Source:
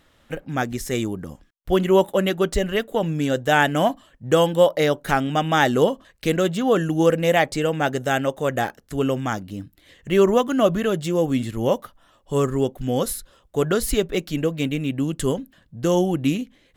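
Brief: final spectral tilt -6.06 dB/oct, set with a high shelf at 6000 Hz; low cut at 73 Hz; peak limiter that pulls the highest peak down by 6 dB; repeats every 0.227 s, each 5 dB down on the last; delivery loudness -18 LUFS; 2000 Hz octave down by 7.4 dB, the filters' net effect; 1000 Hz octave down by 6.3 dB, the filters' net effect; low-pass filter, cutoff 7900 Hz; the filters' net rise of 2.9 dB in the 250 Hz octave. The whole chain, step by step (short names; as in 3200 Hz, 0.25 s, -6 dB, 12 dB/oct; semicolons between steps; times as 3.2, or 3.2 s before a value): HPF 73 Hz; LPF 7900 Hz; bell 250 Hz +4.5 dB; bell 1000 Hz -8 dB; bell 2000 Hz -7.5 dB; high shelf 6000 Hz +6.5 dB; limiter -11.5 dBFS; feedback echo 0.227 s, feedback 56%, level -5 dB; gain +3.5 dB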